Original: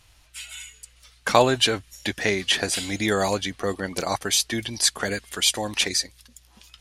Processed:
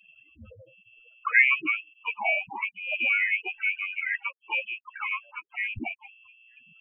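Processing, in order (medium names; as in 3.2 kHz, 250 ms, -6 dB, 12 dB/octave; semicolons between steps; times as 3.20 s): loudest bins only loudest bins 8; frequency inversion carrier 2.7 kHz; harmony voices +3 st -15 dB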